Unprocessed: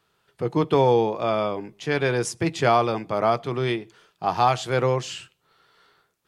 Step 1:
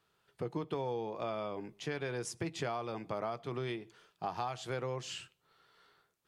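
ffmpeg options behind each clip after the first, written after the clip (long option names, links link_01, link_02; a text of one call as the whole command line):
ffmpeg -i in.wav -af "acompressor=threshold=-27dB:ratio=6,volume=-7dB" out.wav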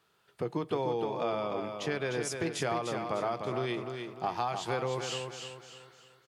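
ffmpeg -i in.wav -filter_complex "[0:a]lowshelf=frequency=81:gain=-10,asplit=2[link_01][link_02];[link_02]aecho=0:1:301|602|903|1204|1505:0.501|0.19|0.0724|0.0275|0.0105[link_03];[link_01][link_03]amix=inputs=2:normalize=0,volume=5dB" out.wav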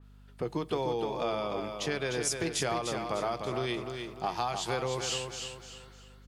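ffmpeg -i in.wav -af "aeval=exprs='val(0)+0.00224*(sin(2*PI*50*n/s)+sin(2*PI*2*50*n/s)/2+sin(2*PI*3*50*n/s)/3+sin(2*PI*4*50*n/s)/4+sin(2*PI*5*50*n/s)/5)':channel_layout=same,adynamicequalizer=threshold=0.00282:dfrequency=3100:dqfactor=0.7:tfrequency=3100:tqfactor=0.7:attack=5:release=100:ratio=0.375:range=3.5:mode=boostabove:tftype=highshelf" out.wav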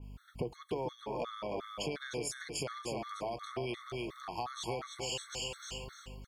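ffmpeg -i in.wav -af "acompressor=threshold=-41dB:ratio=5,afftfilt=real='re*gt(sin(2*PI*2.8*pts/sr)*(1-2*mod(floor(b*sr/1024/1100),2)),0)':imag='im*gt(sin(2*PI*2.8*pts/sr)*(1-2*mod(floor(b*sr/1024/1100),2)),0)':win_size=1024:overlap=0.75,volume=7dB" out.wav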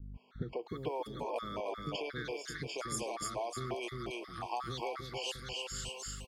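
ffmpeg -i in.wav -filter_complex "[0:a]acrossover=split=350|4800[link_01][link_02][link_03];[link_02]adelay=140[link_04];[link_03]adelay=670[link_05];[link_01][link_04][link_05]amix=inputs=3:normalize=0,volume=1.5dB" out.wav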